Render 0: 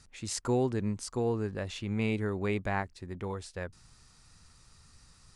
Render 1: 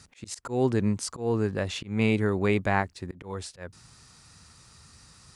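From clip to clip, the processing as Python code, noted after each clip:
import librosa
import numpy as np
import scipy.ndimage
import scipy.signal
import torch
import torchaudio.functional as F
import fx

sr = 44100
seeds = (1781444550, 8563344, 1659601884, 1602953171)

y = scipy.signal.sosfilt(scipy.signal.butter(2, 75.0, 'highpass', fs=sr, output='sos'), x)
y = fx.auto_swell(y, sr, attack_ms=191.0)
y = y * librosa.db_to_amplitude(7.0)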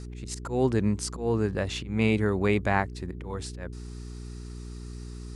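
y = fx.dmg_buzz(x, sr, base_hz=60.0, harmonics=7, level_db=-39.0, tilt_db=-6, odd_only=False)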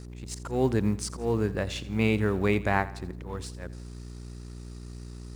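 y = fx.law_mismatch(x, sr, coded='A')
y = fx.echo_feedback(y, sr, ms=84, feedback_pct=46, wet_db=-17.5)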